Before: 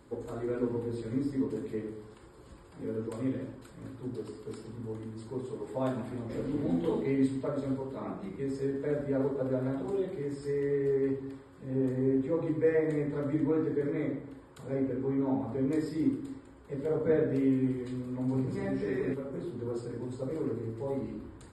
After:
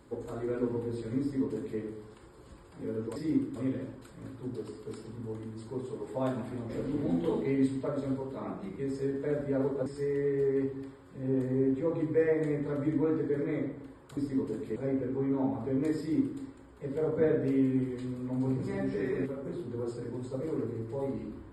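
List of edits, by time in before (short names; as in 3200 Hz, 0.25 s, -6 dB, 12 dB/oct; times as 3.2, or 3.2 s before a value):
1.2–1.79 copy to 14.64
9.46–10.33 cut
15.87–16.27 copy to 3.16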